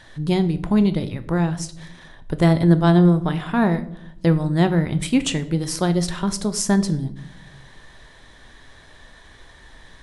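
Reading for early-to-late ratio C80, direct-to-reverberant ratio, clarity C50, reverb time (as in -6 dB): 18.0 dB, 10.0 dB, 15.5 dB, 0.70 s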